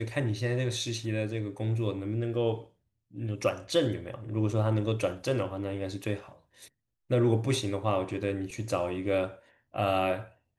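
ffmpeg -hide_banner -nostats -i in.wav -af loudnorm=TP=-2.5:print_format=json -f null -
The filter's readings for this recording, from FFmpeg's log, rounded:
"input_i" : "-30.8",
"input_tp" : "-12.9",
"input_lra" : "2.0",
"input_thresh" : "-41.2",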